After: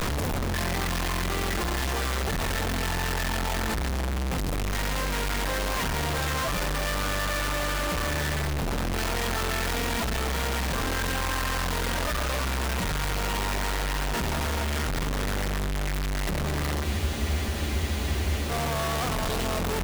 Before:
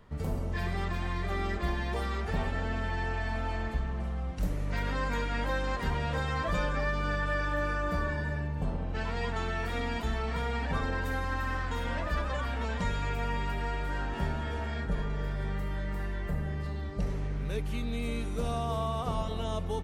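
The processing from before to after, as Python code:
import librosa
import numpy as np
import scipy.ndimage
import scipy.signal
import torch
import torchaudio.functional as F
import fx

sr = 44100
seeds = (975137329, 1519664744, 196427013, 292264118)

y = np.sign(x) * np.sqrt(np.mean(np.square(x)))
y = fx.spec_freeze(y, sr, seeds[0], at_s=16.86, hold_s=1.64)
y = F.gain(torch.from_numpy(y), 4.0).numpy()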